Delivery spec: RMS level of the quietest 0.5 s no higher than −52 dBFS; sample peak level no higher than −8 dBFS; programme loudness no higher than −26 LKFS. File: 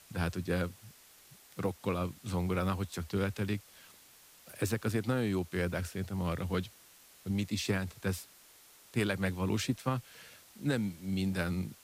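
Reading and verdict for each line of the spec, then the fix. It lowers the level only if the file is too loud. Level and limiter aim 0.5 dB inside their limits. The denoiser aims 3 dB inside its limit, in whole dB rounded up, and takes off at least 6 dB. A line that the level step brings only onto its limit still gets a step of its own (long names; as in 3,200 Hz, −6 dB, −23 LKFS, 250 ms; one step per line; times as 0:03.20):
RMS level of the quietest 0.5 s −59 dBFS: in spec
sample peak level −18.0 dBFS: in spec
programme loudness −34.5 LKFS: in spec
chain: no processing needed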